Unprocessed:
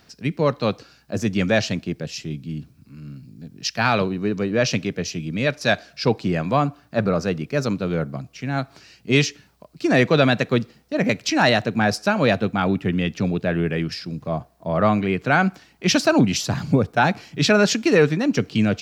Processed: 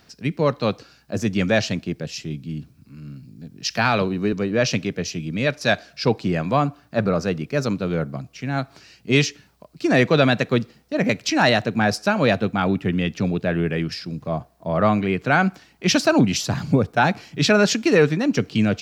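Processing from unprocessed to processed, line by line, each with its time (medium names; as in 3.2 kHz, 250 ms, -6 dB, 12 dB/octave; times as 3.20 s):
3.70–4.33 s: three bands compressed up and down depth 40%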